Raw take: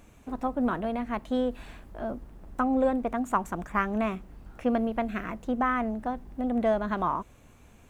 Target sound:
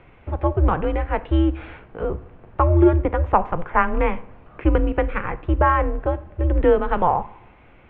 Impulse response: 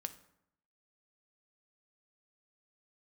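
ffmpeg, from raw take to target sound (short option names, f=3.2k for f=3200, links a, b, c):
-filter_complex "[0:a]asplit=2[a][b];[1:a]atrim=start_sample=2205,highshelf=f=5.5k:g=5.5[c];[b][c]afir=irnorm=-1:irlink=0,volume=8dB[d];[a][d]amix=inputs=2:normalize=0,highpass=f=160:t=q:w=0.5412,highpass=f=160:t=q:w=1.307,lowpass=f=3.1k:t=q:w=0.5176,lowpass=f=3.1k:t=q:w=0.7071,lowpass=f=3.1k:t=q:w=1.932,afreqshift=-180"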